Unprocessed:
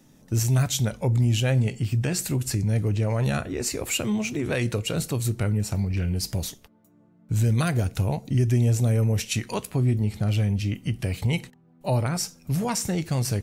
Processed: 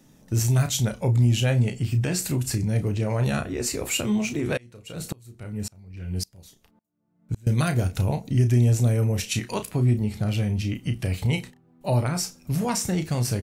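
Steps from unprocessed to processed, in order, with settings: doubler 33 ms -9 dB; 4.57–7.47 dB-ramp tremolo swelling 1.8 Hz, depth 30 dB

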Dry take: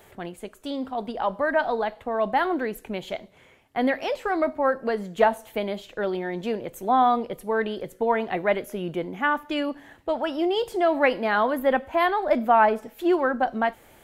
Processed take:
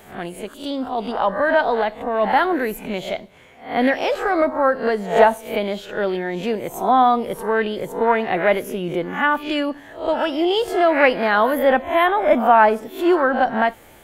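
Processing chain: spectral swells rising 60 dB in 0.40 s; 11.82–12.4 Butterworth band-stop 4600 Hz, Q 2.6; gain +4.5 dB

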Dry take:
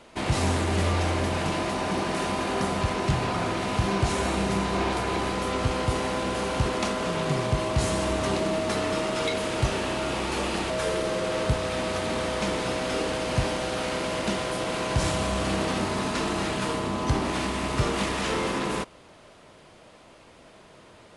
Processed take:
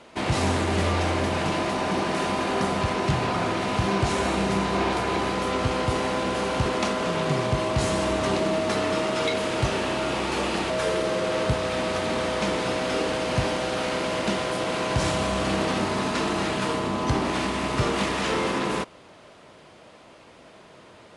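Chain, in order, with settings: HPF 95 Hz 6 dB/oct; high shelf 10000 Hz -9 dB; gain +2.5 dB

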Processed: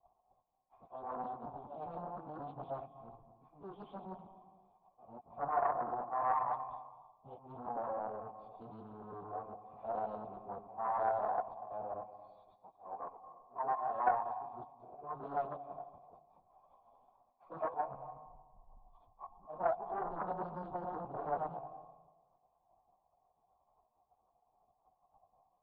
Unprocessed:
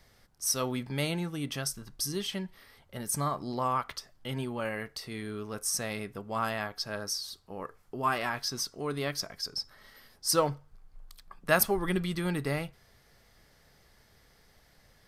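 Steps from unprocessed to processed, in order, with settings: local time reversal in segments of 61 ms; Chebyshev band-stop 1000–3200 Hz, order 3; de-hum 135 Hz, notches 22; auto swell 0.197 s; sample leveller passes 3; plain phase-vocoder stretch 1.7×; soft clip -18.5 dBFS, distortion -24 dB; vocal tract filter a; on a send at -12.5 dB: reverb RT60 1.2 s, pre-delay 0.205 s; on the sum: Doppler distortion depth 0.44 ms; gain +7 dB

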